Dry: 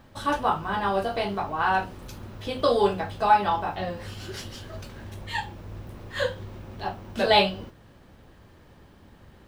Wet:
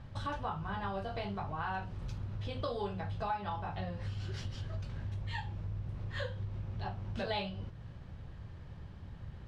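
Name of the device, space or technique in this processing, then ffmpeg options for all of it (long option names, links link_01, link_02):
jukebox: -af "lowpass=5600,lowshelf=frequency=190:width_type=q:width=1.5:gain=9.5,acompressor=threshold=-34dB:ratio=3,volume=-3.5dB"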